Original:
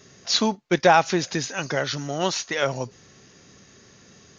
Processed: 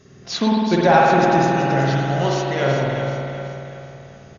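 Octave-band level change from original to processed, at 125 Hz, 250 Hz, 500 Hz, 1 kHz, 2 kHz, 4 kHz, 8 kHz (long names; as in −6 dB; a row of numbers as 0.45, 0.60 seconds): +11.5 dB, +8.0 dB, +6.0 dB, +6.5 dB, +3.5 dB, −2.5 dB, can't be measured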